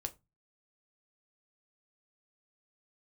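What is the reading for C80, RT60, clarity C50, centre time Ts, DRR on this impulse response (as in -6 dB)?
27.0 dB, 0.20 s, 20.5 dB, 4 ms, 6.0 dB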